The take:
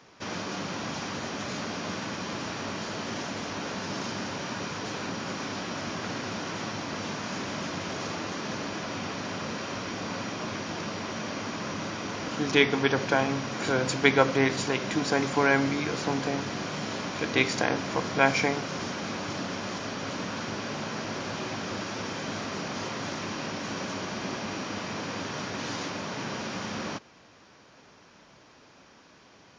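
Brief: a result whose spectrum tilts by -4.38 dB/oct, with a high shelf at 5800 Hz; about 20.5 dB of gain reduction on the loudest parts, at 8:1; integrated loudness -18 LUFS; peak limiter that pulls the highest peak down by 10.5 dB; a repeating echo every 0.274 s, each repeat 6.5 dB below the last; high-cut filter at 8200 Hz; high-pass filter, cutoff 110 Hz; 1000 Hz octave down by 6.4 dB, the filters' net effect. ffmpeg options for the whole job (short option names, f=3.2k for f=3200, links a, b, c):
-af "highpass=110,lowpass=8.2k,equalizer=f=1k:t=o:g=-8.5,highshelf=f=5.8k:g=-7.5,acompressor=threshold=-39dB:ratio=8,alimiter=level_in=12dB:limit=-24dB:level=0:latency=1,volume=-12dB,aecho=1:1:274|548|822|1096|1370|1644:0.473|0.222|0.105|0.0491|0.0231|0.0109,volume=26dB"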